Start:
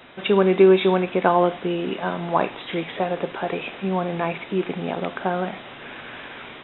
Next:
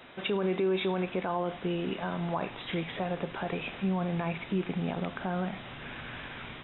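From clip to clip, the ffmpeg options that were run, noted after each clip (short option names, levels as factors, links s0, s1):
-filter_complex "[0:a]asubboost=boost=4:cutoff=180,asplit=2[s0][s1];[s1]acompressor=threshold=0.0398:ratio=6,volume=0.708[s2];[s0][s2]amix=inputs=2:normalize=0,alimiter=limit=0.251:level=0:latency=1:release=26,volume=0.355"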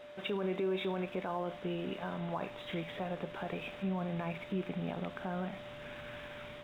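-af "aeval=exprs='val(0)+0.00891*sin(2*PI*590*n/s)':c=same,aeval=exprs='sgn(val(0))*max(abs(val(0))-0.0015,0)':c=same,volume=0.531"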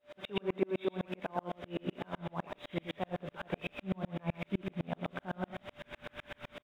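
-af "aecho=1:1:113:0.531,aeval=exprs='val(0)*pow(10,-39*if(lt(mod(-7.9*n/s,1),2*abs(-7.9)/1000),1-mod(-7.9*n/s,1)/(2*abs(-7.9)/1000),(mod(-7.9*n/s,1)-2*abs(-7.9)/1000)/(1-2*abs(-7.9)/1000))/20)':c=same,volume=2.24"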